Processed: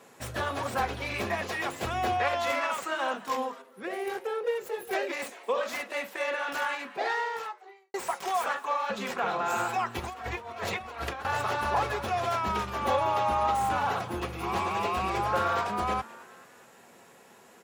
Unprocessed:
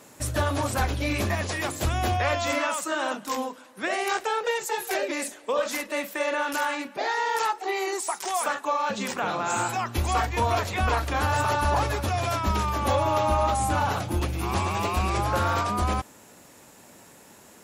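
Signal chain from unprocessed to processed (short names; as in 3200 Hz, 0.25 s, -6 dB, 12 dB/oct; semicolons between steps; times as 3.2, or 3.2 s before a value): tracing distortion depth 0.076 ms; bell 83 Hz -6.5 dB 0.38 oct; 9.99–11.25 negative-ratio compressor -31 dBFS, ratio -0.5; HPF 61 Hz; tone controls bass -8 dB, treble -8 dB; notch comb 300 Hz; frequency-shifting echo 0.213 s, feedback 53%, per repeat +150 Hz, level -20 dB; 3.62–4.93 spectral gain 570–8800 Hz -9 dB; 7.12–7.94 fade out quadratic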